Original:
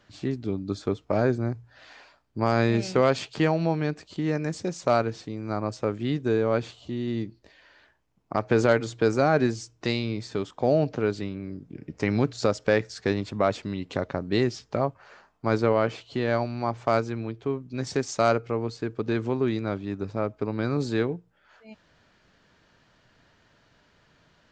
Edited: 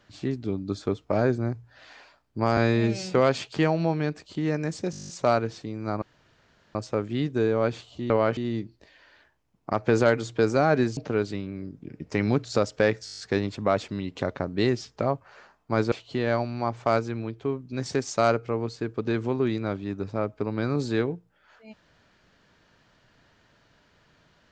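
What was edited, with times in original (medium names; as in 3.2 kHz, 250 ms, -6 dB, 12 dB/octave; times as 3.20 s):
2.57–2.95 s: stretch 1.5×
4.72 s: stutter 0.02 s, 10 plays
5.65 s: insert room tone 0.73 s
9.60–10.85 s: delete
12.93 s: stutter 0.02 s, 8 plays
15.66–15.93 s: move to 7.00 s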